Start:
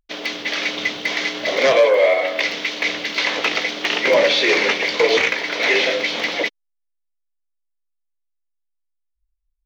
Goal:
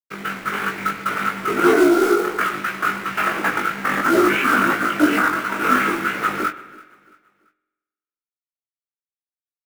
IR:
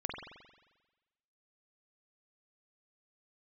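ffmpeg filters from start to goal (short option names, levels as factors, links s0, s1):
-filter_complex "[0:a]lowpass=3800,equalizer=f=2000:w=2.6:g=3.5,acrossover=split=120[s0][s1];[s0]alimiter=level_in=26.6:limit=0.0631:level=0:latency=1,volume=0.0376[s2];[s2][s1]amix=inputs=2:normalize=0,asetrate=28595,aresample=44100,atempo=1.54221,acrusher=bits=4:mode=log:mix=0:aa=0.000001,aeval=exprs='sgn(val(0))*max(abs(val(0))-0.0126,0)':c=same,flanger=delay=15.5:depth=5.1:speed=2.9,asplit=2[s3][s4];[s4]adelay=20,volume=0.501[s5];[s3][s5]amix=inputs=2:normalize=0,aecho=1:1:337|674|1011:0.075|0.0285|0.0108,asplit=2[s6][s7];[1:a]atrim=start_sample=2205,asetrate=43218,aresample=44100[s8];[s7][s8]afir=irnorm=-1:irlink=0,volume=0.237[s9];[s6][s9]amix=inputs=2:normalize=0"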